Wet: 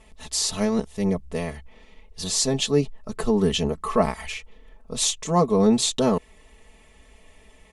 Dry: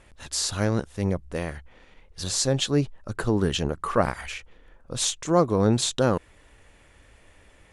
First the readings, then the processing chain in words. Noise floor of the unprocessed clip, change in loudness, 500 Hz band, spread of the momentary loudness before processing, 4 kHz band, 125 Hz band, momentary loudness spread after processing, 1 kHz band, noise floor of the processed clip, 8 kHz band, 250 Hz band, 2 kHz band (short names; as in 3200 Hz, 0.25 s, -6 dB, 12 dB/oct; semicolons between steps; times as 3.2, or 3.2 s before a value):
-56 dBFS, +2.0 dB, +2.0 dB, 14 LU, +2.5 dB, -2.0 dB, 13 LU, +1.5 dB, -54 dBFS, +2.5 dB, +3.0 dB, -2.0 dB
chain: bell 1500 Hz -13.5 dB 0.27 oct; comb 4.6 ms, depth 90%